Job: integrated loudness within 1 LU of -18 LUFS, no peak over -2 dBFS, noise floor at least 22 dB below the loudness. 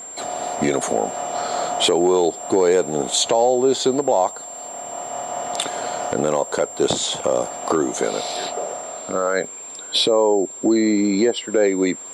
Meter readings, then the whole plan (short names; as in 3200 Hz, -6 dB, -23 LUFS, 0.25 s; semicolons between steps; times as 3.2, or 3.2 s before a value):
ticks 39/s; steady tone 7400 Hz; tone level -33 dBFS; loudness -20.5 LUFS; peak -6.0 dBFS; loudness target -18.0 LUFS
-> de-click; notch 7400 Hz, Q 30; gain +2.5 dB